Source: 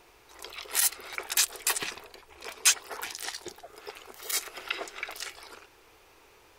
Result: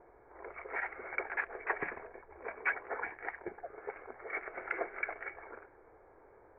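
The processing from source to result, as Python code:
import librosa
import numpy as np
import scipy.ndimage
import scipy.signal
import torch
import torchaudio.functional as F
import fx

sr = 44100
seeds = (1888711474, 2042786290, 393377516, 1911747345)

y = scipy.signal.sosfilt(scipy.signal.cheby1(6, 6, 2300.0, 'lowpass', fs=sr, output='sos'), x)
y = fx.env_lowpass(y, sr, base_hz=1000.0, full_db=-35.5)
y = y * 10.0 ** (3.5 / 20.0)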